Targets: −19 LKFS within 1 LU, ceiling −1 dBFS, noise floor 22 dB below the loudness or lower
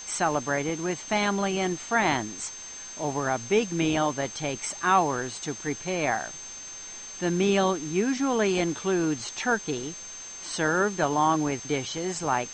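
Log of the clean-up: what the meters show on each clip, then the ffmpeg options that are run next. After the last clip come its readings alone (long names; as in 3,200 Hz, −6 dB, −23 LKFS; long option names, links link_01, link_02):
interfering tone 6,300 Hz; level of the tone −39 dBFS; background noise floor −41 dBFS; target noise floor −49 dBFS; integrated loudness −27.0 LKFS; sample peak −9.5 dBFS; target loudness −19.0 LKFS
→ -af "bandreject=frequency=6300:width=30"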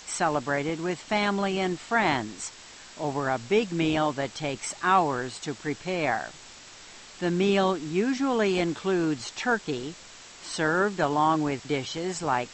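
interfering tone none found; background noise floor −47 dBFS; target noise floor −49 dBFS
→ -af "afftdn=noise_reduction=6:noise_floor=-47"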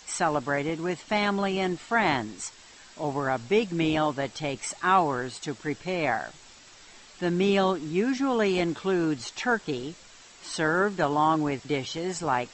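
background noise floor −51 dBFS; integrated loudness −27.0 LKFS; sample peak −10.0 dBFS; target loudness −19.0 LKFS
→ -af "volume=8dB"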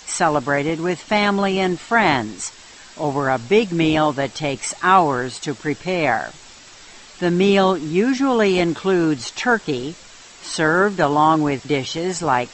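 integrated loudness −19.0 LKFS; sample peak −2.0 dBFS; background noise floor −43 dBFS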